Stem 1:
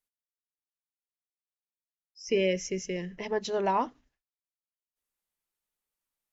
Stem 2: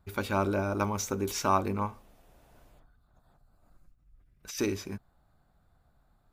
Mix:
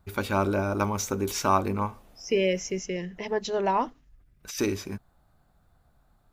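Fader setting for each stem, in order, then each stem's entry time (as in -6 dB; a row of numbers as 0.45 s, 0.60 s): +2.0 dB, +3.0 dB; 0.00 s, 0.00 s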